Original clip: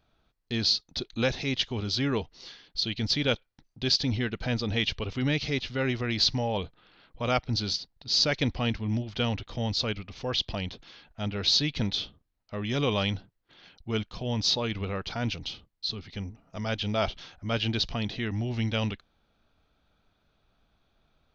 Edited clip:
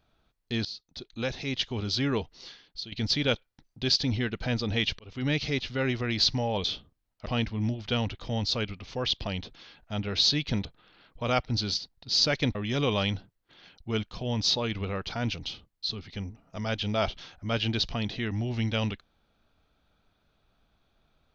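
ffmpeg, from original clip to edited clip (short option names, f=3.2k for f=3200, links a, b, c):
-filter_complex "[0:a]asplit=8[a][b][c][d][e][f][g][h];[a]atrim=end=0.65,asetpts=PTS-STARTPTS,afade=t=out:st=0.646:d=0.004:c=hsin:silence=0.133352[i];[b]atrim=start=0.65:end=2.92,asetpts=PTS-STARTPTS,afade=t=in:d=1.18:silence=0.133352,afade=t=out:st=1.8:d=0.47:silence=0.188365[j];[c]atrim=start=2.92:end=4.99,asetpts=PTS-STARTPTS,afade=t=in:d=0.004:c=hsin:silence=0.188365,afade=t=out:st=2.066:d=0.004:c=hsin[k];[d]atrim=start=4.99:end=6.642,asetpts=PTS-STARTPTS,afade=t=in:d=0.33[l];[e]atrim=start=11.928:end=12.552[m];[f]atrim=start=8.538:end=11.932[n];[g]atrim=start=6.638:end=8.542[o];[h]atrim=start=12.548[p];[i][j][k][l]concat=n=4:v=0:a=1[q];[q][m]acrossfade=d=0.004:c1=hsin:c2=hsin[r];[r][n]acrossfade=d=0.004:c1=hsin:c2=hsin[s];[s][o]acrossfade=d=0.004:c1=hsin:c2=hsin[t];[t][p]acrossfade=d=0.004:c1=hsin:c2=hsin"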